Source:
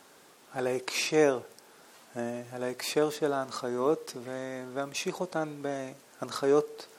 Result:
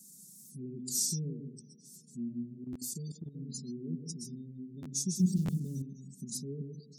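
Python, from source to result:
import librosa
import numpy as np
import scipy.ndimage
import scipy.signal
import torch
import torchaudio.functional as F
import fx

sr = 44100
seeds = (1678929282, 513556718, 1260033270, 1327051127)

y = fx.peak_eq(x, sr, hz=1400.0, db=-7.5, octaves=1.4, at=(0.9, 1.43))
y = fx.echo_feedback(y, sr, ms=418, feedback_pct=56, wet_db=-24)
y = fx.rev_plate(y, sr, seeds[0], rt60_s=0.58, hf_ratio=0.85, predelay_ms=105, drr_db=4.5)
y = fx.spec_gate(y, sr, threshold_db=-25, keep='strong')
y = fx.high_shelf(y, sr, hz=8200.0, db=6.5)
y = y + 0.94 * np.pad(y, (int(5.0 * sr / 1000.0), 0))[:len(y)]
y = fx.leveller(y, sr, passes=2, at=(5.19, 5.82))
y = scipy.signal.sosfilt(scipy.signal.cheby2(4, 70, [670.0, 2100.0], 'bandstop', fs=sr, output='sos'), y)
y = fx.level_steps(y, sr, step_db=14, at=(2.64, 3.35))
y = scipy.signal.sosfilt(scipy.signal.butter(2, 110.0, 'highpass', fs=sr, output='sos'), y)
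y = fx.buffer_glitch(y, sr, at_s=(2.72, 4.82, 5.45), block=512, repeats=2)
y = F.gain(torch.from_numpy(y), 3.5).numpy()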